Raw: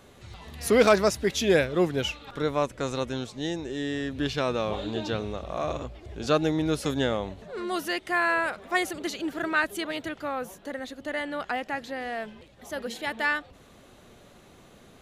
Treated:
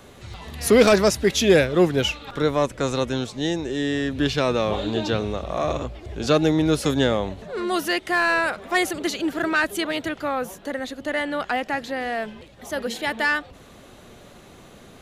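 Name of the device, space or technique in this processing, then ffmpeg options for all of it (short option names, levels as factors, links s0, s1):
one-band saturation: -filter_complex "[0:a]acrossover=split=460|2500[s0][s1][s2];[s1]asoftclip=type=tanh:threshold=0.075[s3];[s0][s3][s2]amix=inputs=3:normalize=0,volume=2.11"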